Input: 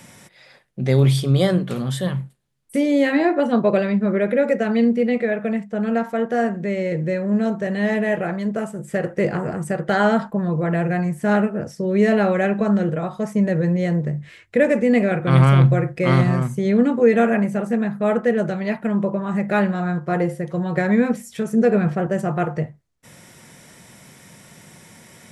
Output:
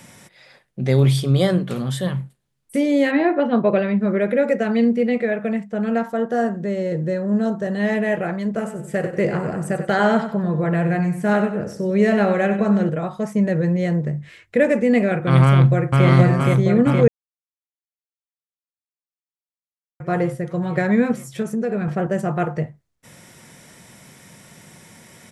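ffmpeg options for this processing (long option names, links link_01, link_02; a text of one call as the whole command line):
ffmpeg -i in.wav -filter_complex "[0:a]asettb=1/sr,asplit=3[link_01][link_02][link_03];[link_01]atrim=end=3.114[link_04];[link_02]atrim=start=3.11:end=3.99,asetpts=PTS-STARTPTS,afade=type=in:duration=0.004:curve=qsin,afade=type=out:start_time=0.876:duration=0.004:curve=qsin,lowpass=frequency=3800:width=0.5412,lowpass=frequency=3800:width=1.3066[link_05];[link_03]atrim=start=3.986[link_06];[link_04][link_05]acrossfade=duration=0.004:curve1=hsin:curve2=qsin[link_07];[link_07][link_06]acrossfade=duration=0.004:curve1=qsin:curve2=hsin,asettb=1/sr,asplit=3[link_08][link_09][link_10];[link_08]atrim=end=6.084[link_11];[link_09]atrim=start=6.08:end=7.8,asetpts=PTS-STARTPTS,afade=type=in:duration=0.004:curve=qsin,afade=type=out:start_time=1.716:duration=0.004:curve=qsin,equalizer=frequency=2300:width_type=o:width=0.4:gain=-12[link_12];[link_10]atrim=start=7.796[link_13];[link_11][link_12]acrossfade=duration=0.004:curve1=hsin:curve2=qsin[link_14];[link_14][link_13]acrossfade=duration=0.004:curve1=qsin:curve2=hsin,asettb=1/sr,asplit=3[link_15][link_16][link_17];[link_15]atrim=end=8.454[link_18];[link_16]atrim=start=8.45:end=12.89,asetpts=PTS-STARTPTS,afade=type=in:duration=0.004:curve=qsin,afade=type=out:start_time=4.436:duration=0.004:curve=qsin,aecho=1:1:95|190|285|380:0.316|0.104|0.0344|0.0114,atrim=end_sample=195804[link_19];[link_17]atrim=start=12.886[link_20];[link_18][link_19]acrossfade=duration=0.004:curve1=hsin:curve2=qsin[link_21];[link_21][link_20]acrossfade=duration=0.004:curve1=qsin:curve2=hsin,asplit=2[link_22][link_23];[link_23]afade=type=in:start_time=15.45:duration=0.01,afade=type=out:start_time=16.06:duration=0.01,aecho=0:1:470|940|1410|1880|2350|2820|3290|3760|4230|4700|5170|5640:0.841395|0.631046|0.473285|0.354964|0.266223|0.199667|0.14975|0.112313|0.0842345|0.0631759|0.0473819|0.0355364[link_24];[link_22][link_24]amix=inputs=2:normalize=0,asettb=1/sr,asplit=3[link_25][link_26][link_27];[link_25]atrim=end=21.424[link_28];[link_26]atrim=start=21.42:end=21.88,asetpts=PTS-STARTPTS,afade=type=in:duration=0.004:curve=qsin,afade=type=out:start_time=0.456:duration=0.004:curve=qsin,acompressor=threshold=-20dB:ratio=4:attack=3.2:release=140:knee=1:detection=peak[link_29];[link_27]atrim=start=21.876[link_30];[link_28][link_29]acrossfade=duration=0.004:curve1=hsin:curve2=qsin[link_31];[link_31][link_30]acrossfade=duration=0.004:curve1=qsin:curve2=hsin,asplit=3[link_32][link_33][link_34];[link_32]atrim=end=17.08,asetpts=PTS-STARTPTS,afade=type=out:start_time=17.076:duration=0.004:curve=hsin[link_35];[link_33]atrim=start=17.08:end=20,asetpts=PTS-STARTPTS,volume=0[link_36];[link_34]atrim=start=20,asetpts=PTS-STARTPTS,afade=type=in:duration=0.004:curve=hsin[link_37];[link_35][link_36][link_37]concat=n=3:v=0:a=1" out.wav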